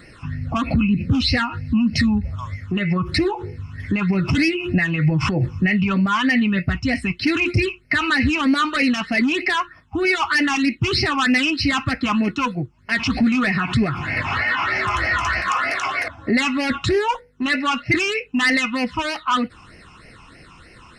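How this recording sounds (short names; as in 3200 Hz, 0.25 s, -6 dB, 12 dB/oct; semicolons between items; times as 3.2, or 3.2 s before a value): phasing stages 8, 3.2 Hz, lowest notch 530–1100 Hz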